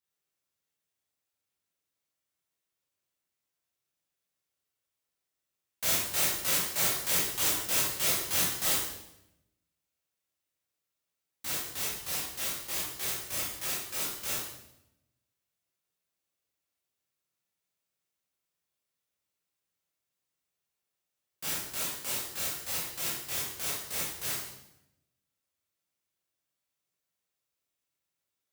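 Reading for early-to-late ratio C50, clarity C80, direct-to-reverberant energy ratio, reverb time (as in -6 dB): 1.5 dB, 4.5 dB, -7.5 dB, 0.85 s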